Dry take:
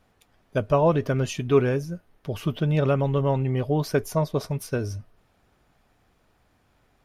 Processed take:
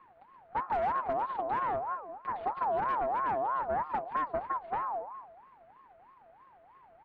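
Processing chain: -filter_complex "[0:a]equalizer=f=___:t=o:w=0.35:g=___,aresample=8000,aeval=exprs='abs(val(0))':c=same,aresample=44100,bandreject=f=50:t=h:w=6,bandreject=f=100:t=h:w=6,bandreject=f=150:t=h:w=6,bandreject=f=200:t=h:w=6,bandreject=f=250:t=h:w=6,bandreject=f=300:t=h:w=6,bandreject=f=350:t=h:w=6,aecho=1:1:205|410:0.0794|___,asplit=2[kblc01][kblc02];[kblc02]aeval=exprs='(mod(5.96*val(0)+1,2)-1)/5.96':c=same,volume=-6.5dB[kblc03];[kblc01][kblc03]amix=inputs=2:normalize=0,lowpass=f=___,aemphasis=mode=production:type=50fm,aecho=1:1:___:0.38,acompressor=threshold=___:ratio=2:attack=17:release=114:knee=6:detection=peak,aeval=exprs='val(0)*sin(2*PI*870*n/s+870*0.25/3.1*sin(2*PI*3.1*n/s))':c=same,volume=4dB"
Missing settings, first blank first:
420, -10.5, 0.0167, 1000, 5.6, -43dB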